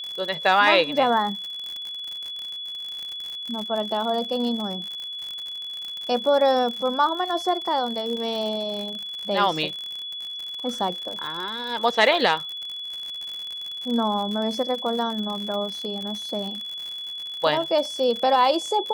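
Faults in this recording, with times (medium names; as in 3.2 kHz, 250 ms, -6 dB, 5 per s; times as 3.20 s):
crackle 82 per s -29 dBFS
whine 3.4 kHz -31 dBFS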